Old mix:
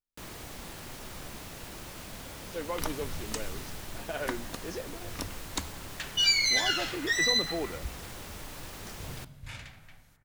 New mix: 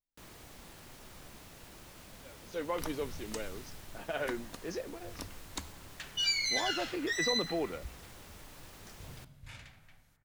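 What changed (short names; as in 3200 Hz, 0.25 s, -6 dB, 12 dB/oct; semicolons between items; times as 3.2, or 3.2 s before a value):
first sound -9.0 dB; second sound -6.5 dB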